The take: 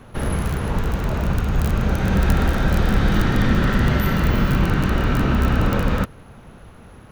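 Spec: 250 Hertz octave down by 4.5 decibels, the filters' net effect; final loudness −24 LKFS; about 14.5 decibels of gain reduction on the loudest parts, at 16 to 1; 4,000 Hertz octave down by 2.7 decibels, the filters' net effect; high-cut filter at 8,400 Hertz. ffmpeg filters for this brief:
ffmpeg -i in.wav -af "lowpass=8400,equalizer=frequency=250:width_type=o:gain=-6.5,equalizer=frequency=4000:width_type=o:gain=-3.5,acompressor=threshold=-28dB:ratio=16,volume=10.5dB" out.wav

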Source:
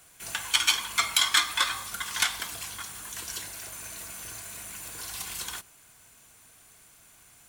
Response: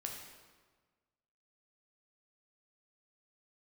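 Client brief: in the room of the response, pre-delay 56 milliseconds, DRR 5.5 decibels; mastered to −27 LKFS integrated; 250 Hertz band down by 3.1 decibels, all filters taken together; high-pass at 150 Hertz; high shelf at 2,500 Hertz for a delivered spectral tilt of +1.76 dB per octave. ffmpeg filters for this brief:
-filter_complex "[0:a]highpass=150,equalizer=frequency=250:width_type=o:gain=-3.5,highshelf=frequency=2500:gain=6,asplit=2[link_01][link_02];[1:a]atrim=start_sample=2205,adelay=56[link_03];[link_02][link_03]afir=irnorm=-1:irlink=0,volume=-4.5dB[link_04];[link_01][link_04]amix=inputs=2:normalize=0,volume=-3.5dB"

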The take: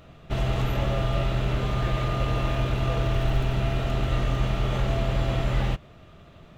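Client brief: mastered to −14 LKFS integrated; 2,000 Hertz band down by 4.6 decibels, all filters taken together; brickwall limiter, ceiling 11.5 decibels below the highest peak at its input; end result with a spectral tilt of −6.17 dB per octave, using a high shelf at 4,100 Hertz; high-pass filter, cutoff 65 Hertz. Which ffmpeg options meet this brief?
ffmpeg -i in.wav -af "highpass=65,equalizer=frequency=2000:width_type=o:gain=-8.5,highshelf=frequency=4100:gain=8,volume=21dB,alimiter=limit=-5dB:level=0:latency=1" out.wav

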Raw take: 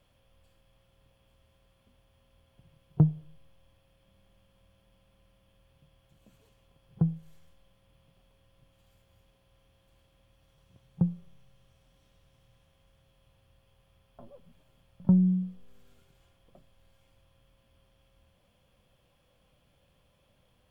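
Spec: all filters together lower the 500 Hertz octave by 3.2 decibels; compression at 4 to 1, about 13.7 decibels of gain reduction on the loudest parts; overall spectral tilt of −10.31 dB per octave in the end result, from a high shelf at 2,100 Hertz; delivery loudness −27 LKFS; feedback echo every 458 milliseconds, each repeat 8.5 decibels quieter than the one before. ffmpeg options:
ffmpeg -i in.wav -af "equalizer=frequency=500:width_type=o:gain=-4,highshelf=frequency=2100:gain=-5,acompressor=threshold=-34dB:ratio=4,aecho=1:1:458|916|1374|1832:0.376|0.143|0.0543|0.0206,volume=16.5dB" out.wav

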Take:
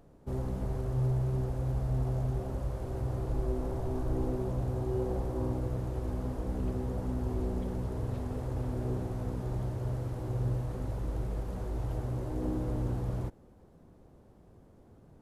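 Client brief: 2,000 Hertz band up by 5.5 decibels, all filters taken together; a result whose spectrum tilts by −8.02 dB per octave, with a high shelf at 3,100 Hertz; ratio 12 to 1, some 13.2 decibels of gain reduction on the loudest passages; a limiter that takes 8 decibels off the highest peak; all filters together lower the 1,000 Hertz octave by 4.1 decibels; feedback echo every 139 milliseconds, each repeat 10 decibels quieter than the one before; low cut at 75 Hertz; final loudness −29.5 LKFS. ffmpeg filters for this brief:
ffmpeg -i in.wav -af "highpass=75,equalizer=frequency=1000:width_type=o:gain=-8,equalizer=frequency=2000:width_type=o:gain=8,highshelf=frequency=3100:gain=6.5,acompressor=threshold=-41dB:ratio=12,alimiter=level_in=17.5dB:limit=-24dB:level=0:latency=1,volume=-17.5dB,aecho=1:1:139|278|417|556:0.316|0.101|0.0324|0.0104,volume=20.5dB" out.wav

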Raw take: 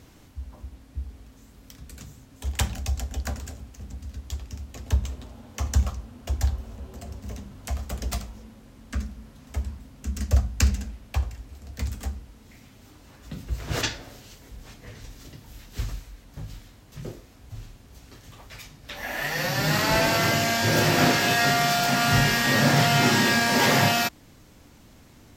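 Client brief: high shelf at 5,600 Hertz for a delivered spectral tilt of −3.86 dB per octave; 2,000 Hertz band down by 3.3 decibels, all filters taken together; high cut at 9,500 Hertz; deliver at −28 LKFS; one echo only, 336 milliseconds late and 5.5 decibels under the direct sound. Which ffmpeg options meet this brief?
ffmpeg -i in.wav -af "lowpass=9500,equalizer=frequency=2000:width_type=o:gain=-4.5,highshelf=frequency=5600:gain=3.5,aecho=1:1:336:0.531,volume=-4dB" out.wav

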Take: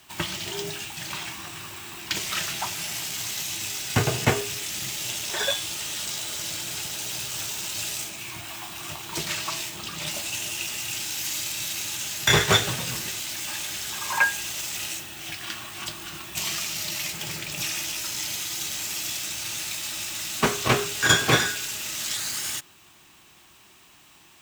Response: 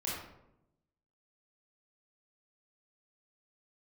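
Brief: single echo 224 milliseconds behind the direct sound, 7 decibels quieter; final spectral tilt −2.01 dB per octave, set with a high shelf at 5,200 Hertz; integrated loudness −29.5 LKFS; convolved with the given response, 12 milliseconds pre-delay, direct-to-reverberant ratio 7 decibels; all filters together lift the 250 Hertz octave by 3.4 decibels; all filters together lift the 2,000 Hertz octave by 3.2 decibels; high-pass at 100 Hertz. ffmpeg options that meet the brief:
-filter_complex "[0:a]highpass=100,equalizer=frequency=250:width_type=o:gain=5,equalizer=frequency=2000:width_type=o:gain=3.5,highshelf=frequency=5200:gain=4.5,aecho=1:1:224:0.447,asplit=2[link_01][link_02];[1:a]atrim=start_sample=2205,adelay=12[link_03];[link_02][link_03]afir=irnorm=-1:irlink=0,volume=-10.5dB[link_04];[link_01][link_04]amix=inputs=2:normalize=0,volume=-7dB"

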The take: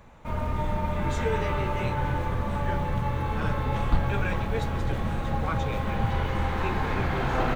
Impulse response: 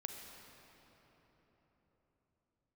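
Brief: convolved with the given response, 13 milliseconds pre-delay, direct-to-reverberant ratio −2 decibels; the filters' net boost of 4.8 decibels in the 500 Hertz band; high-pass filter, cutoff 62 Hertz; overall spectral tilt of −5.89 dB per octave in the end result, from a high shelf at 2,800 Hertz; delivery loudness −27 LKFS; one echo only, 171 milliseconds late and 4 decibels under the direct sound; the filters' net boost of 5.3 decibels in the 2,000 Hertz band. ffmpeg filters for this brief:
-filter_complex "[0:a]highpass=62,equalizer=frequency=500:width_type=o:gain=5.5,equalizer=frequency=2000:width_type=o:gain=9,highshelf=frequency=2800:gain=-6.5,aecho=1:1:171:0.631,asplit=2[link_01][link_02];[1:a]atrim=start_sample=2205,adelay=13[link_03];[link_02][link_03]afir=irnorm=-1:irlink=0,volume=4dB[link_04];[link_01][link_04]amix=inputs=2:normalize=0,volume=-6dB"

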